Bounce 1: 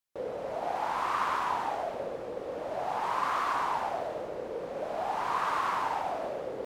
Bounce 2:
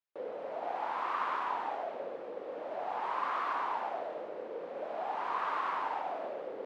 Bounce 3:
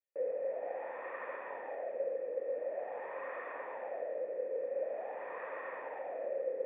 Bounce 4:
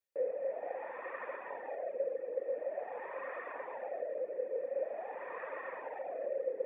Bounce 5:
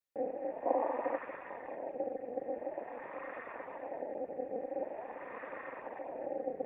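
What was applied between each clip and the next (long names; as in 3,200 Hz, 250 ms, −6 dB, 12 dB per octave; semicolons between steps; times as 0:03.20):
three-way crossover with the lows and the highs turned down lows −22 dB, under 210 Hz, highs −17 dB, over 4,000 Hz; level −4 dB
formant resonators in series e; level +8.5 dB
reverb reduction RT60 0.75 s; level +2 dB
gain on a spectral selection 0:00.66–0:01.18, 470–1,000 Hz +12 dB; amplitude modulation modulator 240 Hz, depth 65%; level +1.5 dB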